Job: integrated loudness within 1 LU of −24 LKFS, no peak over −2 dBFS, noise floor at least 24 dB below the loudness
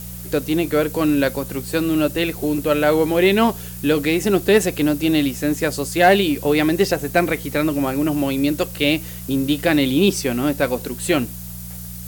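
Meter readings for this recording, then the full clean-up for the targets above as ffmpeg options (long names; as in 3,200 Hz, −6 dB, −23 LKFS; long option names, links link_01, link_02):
mains hum 60 Hz; hum harmonics up to 180 Hz; level of the hum −32 dBFS; background noise floor −33 dBFS; target noise floor −43 dBFS; integrated loudness −19.0 LKFS; sample peak −3.5 dBFS; target loudness −24.0 LKFS
→ -af "bandreject=frequency=60:width_type=h:width=4,bandreject=frequency=120:width_type=h:width=4,bandreject=frequency=180:width_type=h:width=4"
-af "afftdn=noise_reduction=10:noise_floor=-33"
-af "volume=-5dB"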